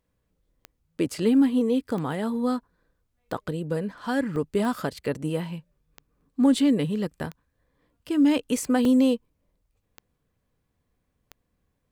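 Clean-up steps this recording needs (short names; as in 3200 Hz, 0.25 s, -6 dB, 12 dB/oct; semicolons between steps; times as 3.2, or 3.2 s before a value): de-click; interpolate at 2.6/4.36/6.21/8.85, 2.2 ms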